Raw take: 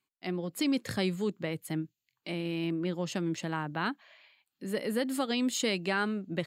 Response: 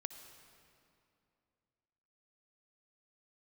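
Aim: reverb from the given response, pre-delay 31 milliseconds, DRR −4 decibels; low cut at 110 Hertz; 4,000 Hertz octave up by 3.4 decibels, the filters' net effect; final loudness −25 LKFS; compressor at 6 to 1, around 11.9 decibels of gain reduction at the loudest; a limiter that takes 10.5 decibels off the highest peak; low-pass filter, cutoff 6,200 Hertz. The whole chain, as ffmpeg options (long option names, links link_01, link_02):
-filter_complex "[0:a]highpass=110,lowpass=6200,equalizer=frequency=4000:width_type=o:gain=5,acompressor=threshold=-38dB:ratio=6,alimiter=level_in=10dB:limit=-24dB:level=0:latency=1,volume=-10dB,asplit=2[link_01][link_02];[1:a]atrim=start_sample=2205,adelay=31[link_03];[link_02][link_03]afir=irnorm=-1:irlink=0,volume=6.5dB[link_04];[link_01][link_04]amix=inputs=2:normalize=0,volume=14.5dB"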